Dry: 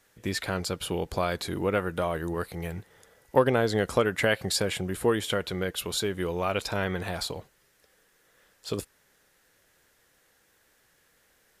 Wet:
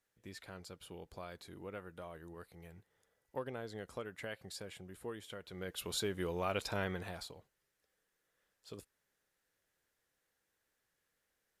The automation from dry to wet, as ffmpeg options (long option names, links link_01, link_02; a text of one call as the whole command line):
ffmpeg -i in.wav -af "volume=-8dB,afade=type=in:start_time=5.45:duration=0.5:silence=0.251189,afade=type=out:start_time=6.81:duration=0.53:silence=0.316228" out.wav